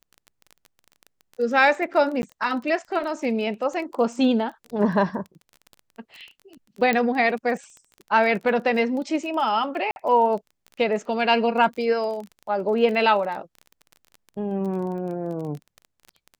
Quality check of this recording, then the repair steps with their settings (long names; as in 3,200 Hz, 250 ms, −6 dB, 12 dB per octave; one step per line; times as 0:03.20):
surface crackle 22 per second −32 dBFS
0:02.22–0:02.23: drop-out 11 ms
0:06.93: click −10 dBFS
0:09.91–0:09.96: drop-out 51 ms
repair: click removal
repair the gap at 0:02.22, 11 ms
repair the gap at 0:09.91, 51 ms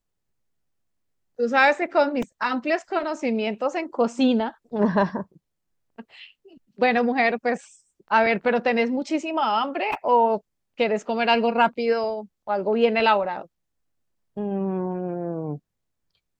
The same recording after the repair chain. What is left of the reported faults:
none of them is left